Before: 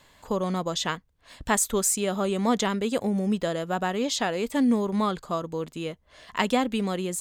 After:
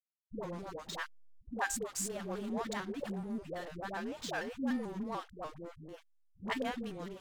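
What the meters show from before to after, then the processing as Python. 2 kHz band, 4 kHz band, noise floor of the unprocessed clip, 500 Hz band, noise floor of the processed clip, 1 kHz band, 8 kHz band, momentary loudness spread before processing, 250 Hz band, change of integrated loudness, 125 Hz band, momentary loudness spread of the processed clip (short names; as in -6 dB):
-8.5 dB, -14.5 dB, -62 dBFS, -14.0 dB, -68 dBFS, -12.5 dB, -14.0 dB, 10 LU, -13.5 dB, -13.0 dB, -14.5 dB, 11 LU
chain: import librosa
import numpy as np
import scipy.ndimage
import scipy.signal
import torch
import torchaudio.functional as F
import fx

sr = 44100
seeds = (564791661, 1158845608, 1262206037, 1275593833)

y = fx.comb_fb(x, sr, f0_hz=850.0, decay_s=0.33, harmonics='all', damping=0.0, mix_pct=70)
y = fx.dynamic_eq(y, sr, hz=1700.0, q=4.6, threshold_db=-57.0, ratio=4.0, max_db=7)
y = fx.backlash(y, sr, play_db=-34.5)
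y = fx.dispersion(y, sr, late='highs', ms=124.0, hz=400.0)
y = fx.vibrato_shape(y, sr, shape='square', rate_hz=3.4, depth_cents=100.0)
y = F.gain(torch.from_numpy(y), -2.0).numpy()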